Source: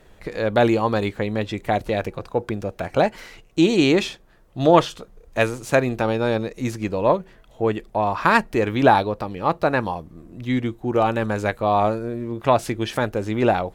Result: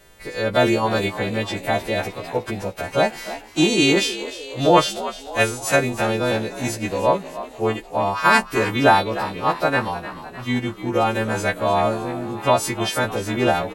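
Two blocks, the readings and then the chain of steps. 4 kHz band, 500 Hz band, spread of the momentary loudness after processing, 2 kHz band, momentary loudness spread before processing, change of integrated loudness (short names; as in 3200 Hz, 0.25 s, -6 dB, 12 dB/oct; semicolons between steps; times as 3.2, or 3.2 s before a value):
+6.5 dB, 0.0 dB, 11 LU, +4.0 dB, 11 LU, +0.5 dB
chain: frequency quantiser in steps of 2 st; frequency-shifting echo 0.304 s, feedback 57%, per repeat +68 Hz, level -14 dB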